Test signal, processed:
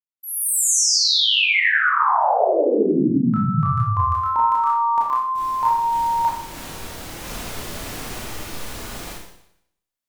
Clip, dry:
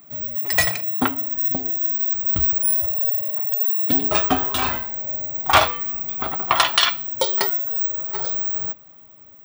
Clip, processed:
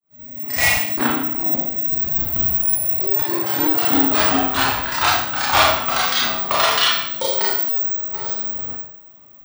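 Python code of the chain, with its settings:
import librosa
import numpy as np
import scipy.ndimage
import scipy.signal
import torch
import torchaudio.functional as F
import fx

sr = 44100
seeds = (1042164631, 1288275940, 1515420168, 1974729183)

y = fx.fade_in_head(x, sr, length_s=0.63)
y = fx.rev_schroeder(y, sr, rt60_s=0.74, comb_ms=26, drr_db=-5.5)
y = fx.echo_pitch(y, sr, ms=85, semitones=2, count=3, db_per_echo=-3.0)
y = F.gain(torch.from_numpy(y), -5.5).numpy()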